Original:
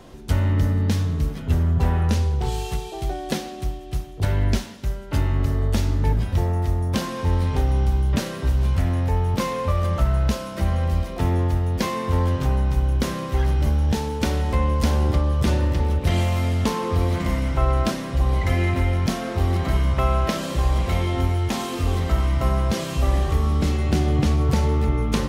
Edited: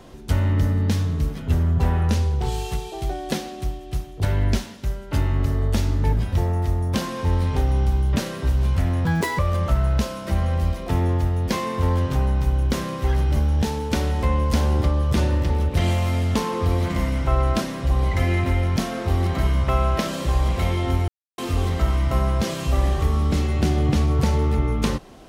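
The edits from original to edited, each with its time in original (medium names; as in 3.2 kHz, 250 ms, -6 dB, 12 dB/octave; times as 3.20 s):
9.05–9.69 s: speed 188%
21.38–21.68 s: mute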